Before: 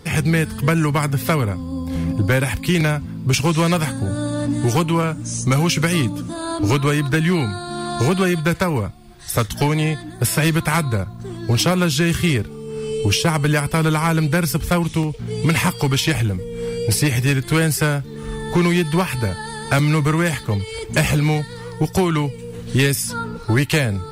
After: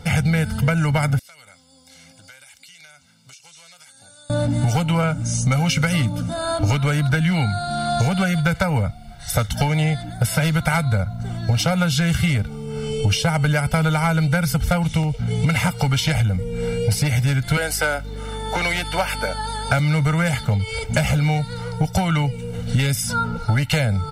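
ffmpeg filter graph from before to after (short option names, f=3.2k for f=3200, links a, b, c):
-filter_complex "[0:a]asettb=1/sr,asplit=3[a][b][c];[a]atrim=end=1.194[d];[b]atrim=start=1.19:end=4.3,asetpts=PTS-STARTPTS,afade=t=in:d=0.004:c=qsin,afade=t=out:st=3.106:d=0.004:c=qsin,bandpass=f=6.8k:t=q:w=1.2,acompressor=threshold=-44dB:ratio=10:attack=3.2:release=140:knee=1:detection=peak[e];[c]atrim=start=4.296[f];[d][e]acrossfade=d=0.004:c1=hsin:c2=qsin[g];[g][f]acrossfade=d=0.004:c1=qsin:c2=hsin,asettb=1/sr,asplit=3[h][i][j];[h]atrim=end=17.574[k];[i]atrim=start=17.57:end=19.7,asetpts=PTS-STARTPTS,afade=t=in:d=0.004:c=qsin,afade=t=out:st=2.126:d=0.004:c=qsin,highpass=f=290:w=0.5412,highpass=f=290:w=1.3066,aeval=exprs='val(0)+0.0158*(sin(2*PI*50*n/s)+sin(2*PI*2*50*n/s)/2+sin(2*PI*3*50*n/s)/3+sin(2*PI*4*50*n/s)/4+sin(2*PI*5*50*n/s)/5)':c=same[l];[j]atrim=start=19.696[m];[k][l]acrossfade=d=0.004:c1=hsin:c2=qsin[n];[n][m]acrossfade=d=0.004:c1=qsin:c2=hsin,aecho=1:1:1.4:0.89,acompressor=threshold=-17dB:ratio=6,highshelf=f=7.4k:g=-6.5,volume=1.5dB"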